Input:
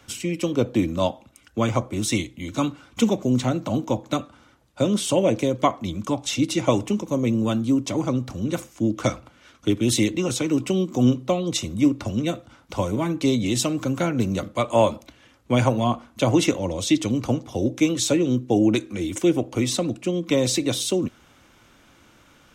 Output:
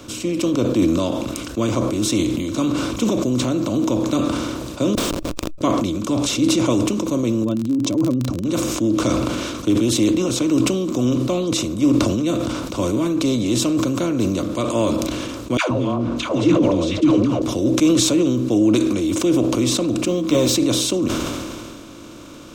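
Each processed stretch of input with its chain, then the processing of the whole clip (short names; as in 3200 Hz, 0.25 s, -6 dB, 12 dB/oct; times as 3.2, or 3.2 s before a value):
4.95–5.61 HPF 1400 Hz + Schmitt trigger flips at -27.5 dBFS + transient shaper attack +10 dB, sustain -4 dB
7.43–8.44 spectral contrast raised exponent 1.8 + crackle 40/s -32 dBFS
15.57–17.42 block floating point 7-bit + LPF 2600 Hz + dispersion lows, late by 0.141 s, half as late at 610 Hz
20.06–20.55 doubler 13 ms -3 dB + decimation joined by straight lines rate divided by 2×
whole clip: per-bin compression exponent 0.6; thirty-one-band EQ 315 Hz +6 dB, 800 Hz -10 dB, 2000 Hz -8 dB, 10000 Hz -4 dB; sustainer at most 25 dB/s; gain -4.5 dB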